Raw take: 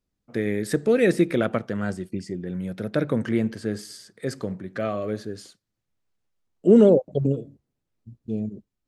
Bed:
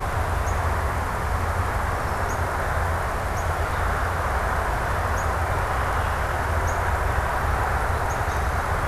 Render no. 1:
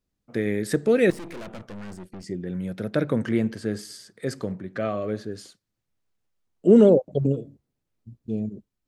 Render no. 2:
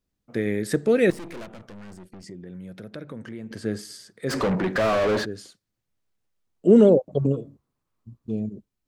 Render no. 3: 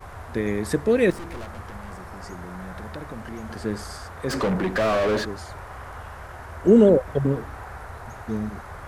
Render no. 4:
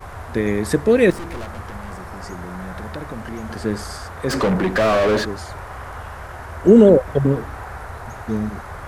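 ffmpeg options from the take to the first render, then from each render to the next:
ffmpeg -i in.wav -filter_complex "[0:a]asettb=1/sr,asplit=3[link_01][link_02][link_03];[link_01]atrim=end=1.104[link_04];[link_02]atrim=start=1.1:end=2.24,asetpts=PTS-STARTPTS,afade=type=in:duration=0.004:curve=qsin,afade=type=out:start_time=1.136:duration=0.004:curve=qsin,aeval=exprs='(tanh(63.1*val(0)+0.7)-tanh(0.7))/63.1':channel_layout=same[link_05];[link_03]atrim=start=2.236[link_06];[link_04][link_05]acrossfade=duration=0.004:curve1=hsin:curve2=qsin[link_07];[link_07][link_06]acrossfade=duration=0.004:curve1=qsin:curve2=hsin,asettb=1/sr,asplit=3[link_08][link_09][link_10];[link_08]atrim=end=4.524[link_11];[link_09]atrim=start=4.52:end=5.32,asetpts=PTS-STARTPTS,afade=type=in:duration=0.004:curve=qsin,afade=type=out:start_time=0.796:duration=0.004:curve=qsin,highshelf=frequency=6500:gain=-6.5[link_12];[link_10]atrim=start=5.316[link_13];[link_11][link_12]acrossfade=duration=0.004:curve1=hsin:curve2=qsin[link_14];[link_14][link_13]acrossfade=duration=0.004:curve1=qsin:curve2=hsin" out.wav
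ffmpeg -i in.wav -filter_complex "[0:a]asettb=1/sr,asplit=3[link_01][link_02][link_03];[link_01]atrim=end=1.454[link_04];[link_02]atrim=start=1.45:end=3.51,asetpts=PTS-STARTPTS,afade=type=in:duration=0.004:curve=qsin,afade=type=out:start_time=2.056:duration=0.004:curve=qsin,acompressor=threshold=-40dB:ratio=2.5:attack=3.2:release=140:knee=1:detection=peak[link_05];[link_03]atrim=start=3.506[link_06];[link_04][link_05]acrossfade=duration=0.004:curve1=hsin:curve2=qsin[link_07];[link_07][link_06]acrossfade=duration=0.004:curve1=qsin:curve2=hsin,asplit=3[link_08][link_09][link_10];[link_08]afade=type=out:start_time=4.29:duration=0.02[link_11];[link_09]asplit=2[link_12][link_13];[link_13]highpass=frequency=720:poles=1,volume=35dB,asoftclip=type=tanh:threshold=-15dB[link_14];[link_12][link_14]amix=inputs=2:normalize=0,lowpass=frequency=2000:poles=1,volume=-6dB,afade=type=in:start_time=4.29:duration=0.02,afade=type=out:start_time=5.24:duration=0.02[link_15];[link_10]afade=type=in:start_time=5.24:duration=0.02[link_16];[link_11][link_15][link_16]amix=inputs=3:normalize=0,asettb=1/sr,asplit=3[link_17][link_18][link_19];[link_17]atrim=end=7.094[link_20];[link_18]atrim=start=7.09:end=8.32,asetpts=PTS-STARTPTS,afade=type=in:duration=0.004:curve=qsin,afade=type=out:start_time=1.226:duration=0.004:curve=qsin,equalizer=frequency=1100:width_type=o:width=0.58:gain=13[link_21];[link_19]atrim=start=8.316[link_22];[link_20][link_21]acrossfade=duration=0.004:curve1=hsin:curve2=qsin[link_23];[link_23][link_22]acrossfade=duration=0.004:curve1=qsin:curve2=hsin" out.wav
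ffmpeg -i in.wav -i bed.wav -filter_complex "[1:a]volume=-14.5dB[link_01];[0:a][link_01]amix=inputs=2:normalize=0" out.wav
ffmpeg -i in.wav -af "volume=5dB,alimiter=limit=-1dB:level=0:latency=1" out.wav

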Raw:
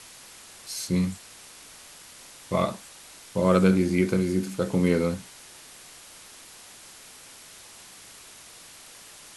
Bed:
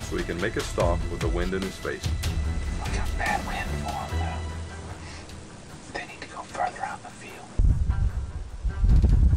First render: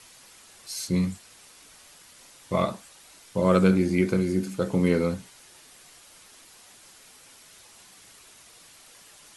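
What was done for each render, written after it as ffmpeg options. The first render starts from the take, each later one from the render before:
ffmpeg -i in.wav -af "afftdn=noise_reduction=6:noise_floor=-48" out.wav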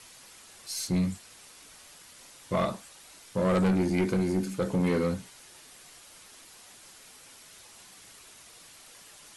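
ffmpeg -i in.wav -af "asoftclip=type=tanh:threshold=-20dB,aeval=exprs='0.1*(cos(1*acos(clip(val(0)/0.1,-1,1)))-cos(1*PI/2))+0.000891*(cos(8*acos(clip(val(0)/0.1,-1,1)))-cos(8*PI/2))':channel_layout=same" out.wav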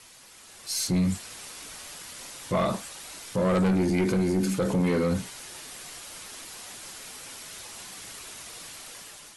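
ffmpeg -i in.wav -af "dynaudnorm=framelen=310:gausssize=5:maxgain=9.5dB,alimiter=limit=-19dB:level=0:latency=1:release=28" out.wav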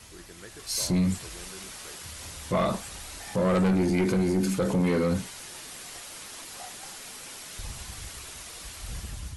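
ffmpeg -i in.wav -i bed.wav -filter_complex "[1:a]volume=-19.5dB[link_01];[0:a][link_01]amix=inputs=2:normalize=0" out.wav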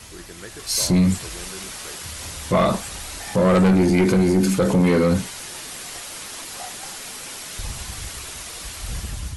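ffmpeg -i in.wav -af "volume=7.5dB" out.wav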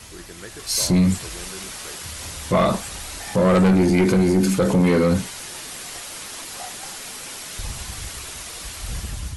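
ffmpeg -i in.wav -af anull out.wav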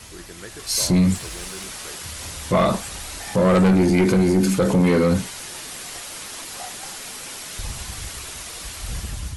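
ffmpeg -i in.wav -filter_complex "[0:a]asettb=1/sr,asplit=3[link_01][link_02][link_03];[link_01]atrim=end=1.154[link_04];[link_02]atrim=start=1.15:end=1.66,asetpts=PTS-STARTPTS,afade=type=in:duration=0.004:curve=qsin,afade=type=out:start_time=0.506:duration=0.004:curve=qsin,acrusher=bits=5:mode=log:mix=0:aa=0.000001[link_05];[link_03]atrim=start=1.656[link_06];[link_04][link_05]acrossfade=duration=0.004:curve1=hsin:curve2=qsin[link_07];[link_07][link_06]acrossfade=duration=0.004:curve1=qsin:curve2=hsin" out.wav

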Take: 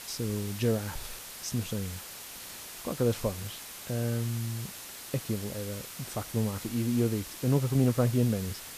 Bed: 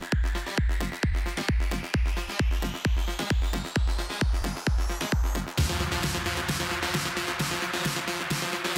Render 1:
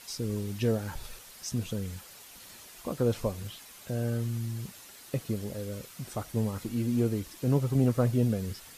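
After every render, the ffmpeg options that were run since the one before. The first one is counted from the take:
ffmpeg -i in.wav -af "afftdn=noise_reduction=8:noise_floor=-44" out.wav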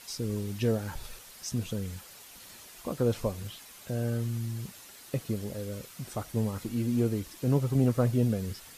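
ffmpeg -i in.wav -af anull out.wav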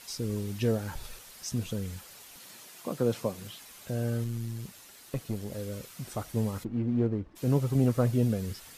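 ffmpeg -i in.wav -filter_complex "[0:a]asettb=1/sr,asplit=3[link_01][link_02][link_03];[link_01]atrim=end=2.364[link_04];[link_02]atrim=start=2.36:end=3.6,asetpts=PTS-STARTPTS,afade=type=in:duration=0.004:curve=qsin,afade=type=out:start_time=1.236:duration=0.004:curve=qsin,highpass=frequency=120:width=0.5412,highpass=frequency=120:width=1.3066[link_05];[link_03]atrim=start=3.596[link_06];[link_04][link_05]acrossfade=duration=0.004:curve1=hsin:curve2=qsin[link_07];[link_07][link_06]acrossfade=duration=0.004:curve1=qsin:curve2=hsin,asettb=1/sr,asplit=3[link_08][link_09][link_10];[link_08]atrim=end=4.244[link_11];[link_09]atrim=start=4.24:end=5.52,asetpts=PTS-STARTPTS,afade=type=in:duration=0.004:curve=qsin,afade=type=out:start_time=1.276:duration=0.004:curve=qsin,aeval=exprs='(tanh(12.6*val(0)+0.5)-tanh(0.5))/12.6':channel_layout=same[link_12];[link_10]atrim=start=5.516[link_13];[link_11][link_12]acrossfade=duration=0.004:curve1=hsin:curve2=qsin[link_14];[link_14][link_13]acrossfade=duration=0.004:curve1=qsin:curve2=hsin,asplit=3[link_15][link_16][link_17];[link_15]afade=type=out:start_time=6.63:duration=0.02[link_18];[link_16]adynamicsmooth=sensitivity=2.5:basefreq=920,afade=type=in:start_time=6.63:duration=0.02,afade=type=out:start_time=7.35:duration=0.02[link_19];[link_17]afade=type=in:start_time=7.35:duration=0.02[link_20];[link_18][link_19][link_20]amix=inputs=3:normalize=0" out.wav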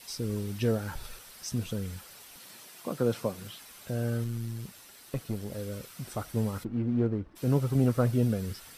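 ffmpeg -i in.wav -af "bandreject=frequency=6800:width=11,adynamicequalizer=threshold=0.00112:dfrequency=1400:dqfactor=5.3:tfrequency=1400:tqfactor=5.3:attack=5:release=100:ratio=0.375:range=2.5:mode=boostabove:tftype=bell" out.wav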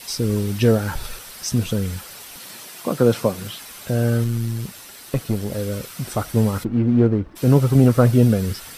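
ffmpeg -i in.wav -af "volume=11.5dB,alimiter=limit=-3dB:level=0:latency=1" out.wav

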